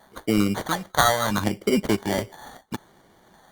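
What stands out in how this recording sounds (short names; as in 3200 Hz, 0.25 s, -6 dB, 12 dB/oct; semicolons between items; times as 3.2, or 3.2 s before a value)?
phasing stages 2, 0.73 Hz, lowest notch 240–1300 Hz; aliases and images of a low sample rate 2600 Hz, jitter 0%; Opus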